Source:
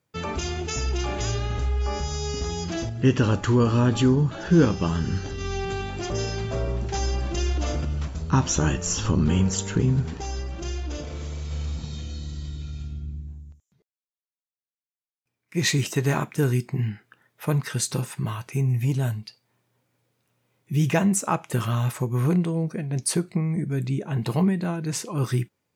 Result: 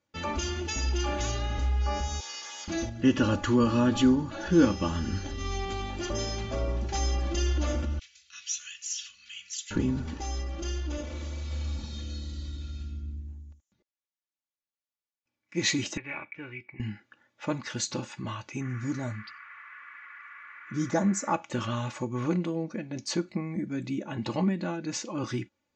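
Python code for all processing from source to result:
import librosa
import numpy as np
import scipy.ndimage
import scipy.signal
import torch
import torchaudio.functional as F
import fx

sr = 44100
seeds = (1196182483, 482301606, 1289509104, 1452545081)

y = fx.chain(x, sr, fx.lower_of_two(delay_ms=4.4),
    fx.highpass(hz=1200.0, slope=12), at=(2.2, 2.68))
y = fx.chain(y, sr, fx.cheby2_highpass(hz=900.0, order=4, stop_db=50),
    fx.high_shelf(hz=3800.0, db=-5.0), at=(7.99, 9.71))
y = fx.chain(y, sr, fx.ladder_lowpass(hz=2400.0, resonance_pct=85),
    fx.peak_eq(hz=230.0, db=-12.0, octaves=0.39), at=(15.97, 16.8))
y = fx.env_phaser(y, sr, low_hz=170.0, high_hz=2700.0, full_db=-25.5, at=(18.6, 21.32), fade=0.02)
y = fx.dmg_noise_band(y, sr, seeds[0], low_hz=1100.0, high_hz=2200.0, level_db=-45.0, at=(18.6, 21.32), fade=0.02)
y = scipy.signal.sosfilt(scipy.signal.ellip(4, 1.0, 40, 6900.0, 'lowpass', fs=sr, output='sos'), y)
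y = y + 0.74 * np.pad(y, (int(3.5 * sr / 1000.0), 0))[:len(y)]
y = y * 10.0 ** (-3.5 / 20.0)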